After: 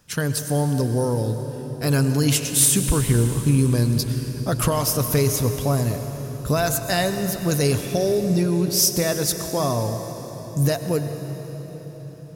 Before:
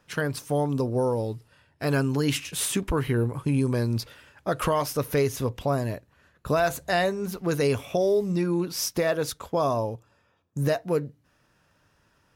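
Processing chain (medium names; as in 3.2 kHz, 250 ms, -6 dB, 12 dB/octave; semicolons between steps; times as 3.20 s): tone controls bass +8 dB, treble +13 dB; on a send: reverberation RT60 4.8 s, pre-delay 92 ms, DRR 7.5 dB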